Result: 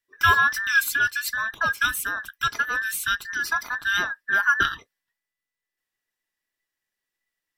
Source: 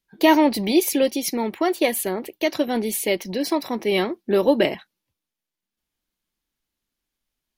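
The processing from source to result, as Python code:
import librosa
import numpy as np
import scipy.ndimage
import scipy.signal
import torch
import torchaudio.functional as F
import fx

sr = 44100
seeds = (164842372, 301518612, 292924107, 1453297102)

y = fx.band_invert(x, sr, width_hz=2000)
y = F.gain(torch.from_numpy(y), -3.0).numpy()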